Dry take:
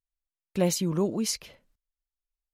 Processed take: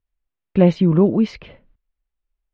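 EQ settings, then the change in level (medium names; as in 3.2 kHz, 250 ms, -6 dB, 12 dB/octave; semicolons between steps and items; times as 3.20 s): low-pass 3.1 kHz 24 dB/octave; bass shelf 490 Hz +8 dB; +6.0 dB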